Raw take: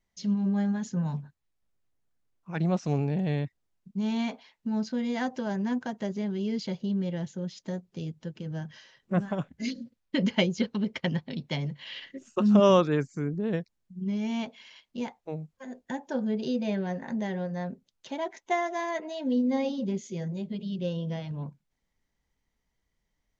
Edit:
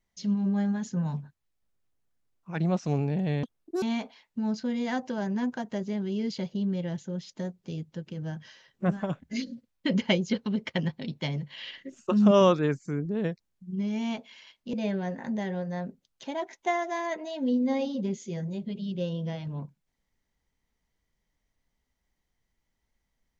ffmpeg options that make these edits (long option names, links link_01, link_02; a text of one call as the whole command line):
ffmpeg -i in.wav -filter_complex "[0:a]asplit=4[link_01][link_02][link_03][link_04];[link_01]atrim=end=3.434[link_05];[link_02]atrim=start=3.43:end=4.11,asetpts=PTS-STARTPTS,asetrate=76293,aresample=44100,atrim=end_sample=17334,asetpts=PTS-STARTPTS[link_06];[link_03]atrim=start=4.106:end=15.022[link_07];[link_04]atrim=start=16.568[link_08];[link_05][link_06]acrossfade=duration=0.004:curve1=hsin:curve2=hsin[link_09];[link_09][link_07]acrossfade=duration=0.004:curve1=hsin:curve2=hsin[link_10];[link_10][link_08]acrossfade=duration=0.004:curve1=hsin:curve2=hsin" out.wav